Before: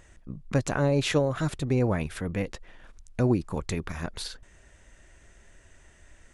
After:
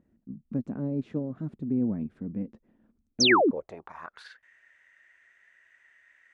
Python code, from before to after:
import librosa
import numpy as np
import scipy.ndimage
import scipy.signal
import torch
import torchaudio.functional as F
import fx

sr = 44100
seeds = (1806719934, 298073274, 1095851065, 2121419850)

y = fx.filter_sweep_bandpass(x, sr, from_hz=230.0, to_hz=1900.0, start_s=3.08, end_s=4.35, q=4.5)
y = fx.spec_paint(y, sr, seeds[0], shape='fall', start_s=3.2, length_s=0.31, low_hz=220.0, high_hz=6600.0, level_db=-26.0)
y = y * librosa.db_to_amplitude(5.0)